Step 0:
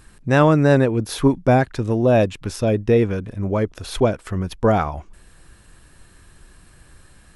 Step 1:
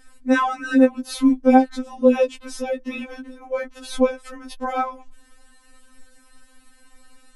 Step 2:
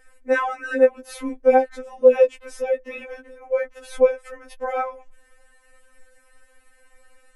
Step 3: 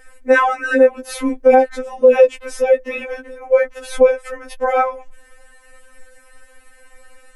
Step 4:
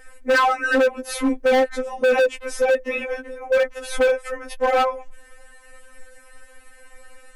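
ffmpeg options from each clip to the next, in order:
ffmpeg -i in.wav -af "afftfilt=real='re*3.46*eq(mod(b,12),0)':imag='im*3.46*eq(mod(b,12),0)':win_size=2048:overlap=0.75" out.wav
ffmpeg -i in.wav -af "equalizer=frequency=125:width_type=o:width=1:gain=-11,equalizer=frequency=250:width_type=o:width=1:gain=-10,equalizer=frequency=500:width_type=o:width=1:gain=11,equalizer=frequency=1000:width_type=o:width=1:gain=-3,equalizer=frequency=2000:width_type=o:width=1:gain=8,equalizer=frequency=4000:width_type=o:width=1:gain=-8,volume=-4.5dB" out.wav
ffmpeg -i in.wav -af "alimiter=level_in=10dB:limit=-1dB:release=50:level=0:latency=1,volume=-1dB" out.wav
ffmpeg -i in.wav -af "asoftclip=type=hard:threshold=-14dB" out.wav

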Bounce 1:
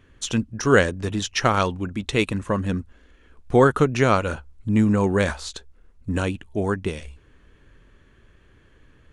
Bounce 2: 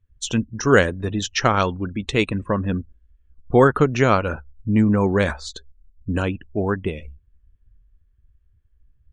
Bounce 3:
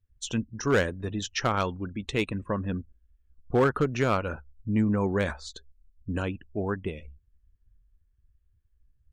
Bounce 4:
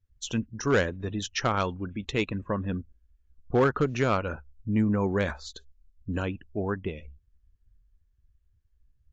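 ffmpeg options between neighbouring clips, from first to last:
ffmpeg -i in.wav -af "afftdn=noise_reduction=30:noise_floor=-39,volume=1.5dB" out.wav
ffmpeg -i in.wav -af "asoftclip=type=hard:threshold=-8.5dB,volume=-7.5dB" out.wav
ffmpeg -i in.wav -ar 16000 -c:a aac -b:a 64k out.aac

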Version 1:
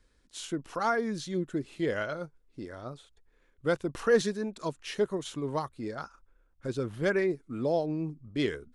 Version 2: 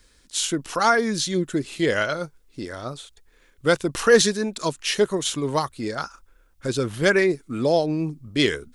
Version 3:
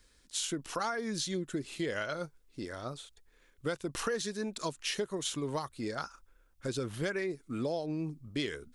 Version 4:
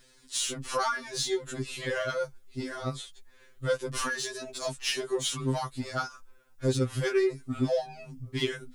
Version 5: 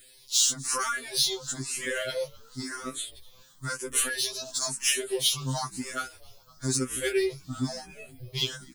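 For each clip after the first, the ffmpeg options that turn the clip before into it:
ffmpeg -i in.wav -af "highshelf=frequency=2300:gain=11,volume=7.5dB" out.wav
ffmpeg -i in.wav -af "acompressor=threshold=-23dB:ratio=8,volume=-7.5dB" out.wav
ffmpeg -i in.wav -filter_complex "[0:a]asplit=2[link_01][link_02];[link_02]asoftclip=type=hard:threshold=-38.5dB,volume=-6.5dB[link_03];[link_01][link_03]amix=inputs=2:normalize=0,afftfilt=real='re*2.45*eq(mod(b,6),0)':imag='im*2.45*eq(mod(b,6),0)':win_size=2048:overlap=0.75,volume=5.5dB" out.wav
ffmpeg -i in.wav -filter_complex "[0:a]asplit=5[link_01][link_02][link_03][link_04][link_05];[link_02]adelay=254,afreqshift=-72,volume=-24dB[link_06];[link_03]adelay=508,afreqshift=-144,volume=-28.2dB[link_07];[link_04]adelay=762,afreqshift=-216,volume=-32.3dB[link_08];[link_05]adelay=1016,afreqshift=-288,volume=-36.5dB[link_09];[link_01][link_06][link_07][link_08][link_09]amix=inputs=5:normalize=0,crystalizer=i=4:c=0,asplit=2[link_10][link_11];[link_11]afreqshift=0.99[link_12];[link_10][link_12]amix=inputs=2:normalize=1" out.wav

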